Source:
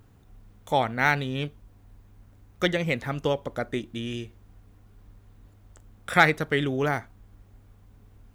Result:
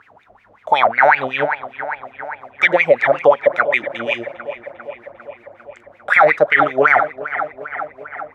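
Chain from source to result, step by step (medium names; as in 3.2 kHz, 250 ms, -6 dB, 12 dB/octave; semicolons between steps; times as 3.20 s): wah-wah 5.4 Hz 570–2400 Hz, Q 11; filtered feedback delay 400 ms, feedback 68%, low-pass 3.4 kHz, level -16 dB; loudness maximiser +31.5 dB; trim -1 dB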